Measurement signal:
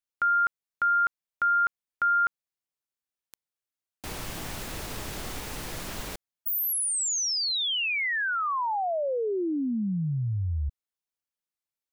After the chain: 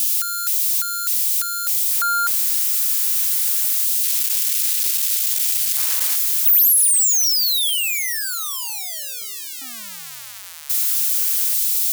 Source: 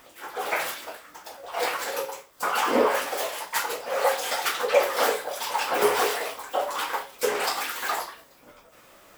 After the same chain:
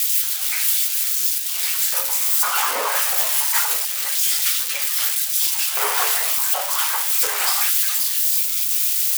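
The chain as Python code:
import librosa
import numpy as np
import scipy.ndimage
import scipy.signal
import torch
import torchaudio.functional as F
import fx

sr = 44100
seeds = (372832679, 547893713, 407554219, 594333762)

y = x + 0.5 * 10.0 ** (-15.5 / 20.0) * np.diff(np.sign(x), prepend=np.sign(x[:1]))
y = fx.filter_lfo_highpass(y, sr, shape='square', hz=0.26, low_hz=920.0, high_hz=2600.0, q=0.81)
y = y * 10.0 ** (2.5 / 20.0)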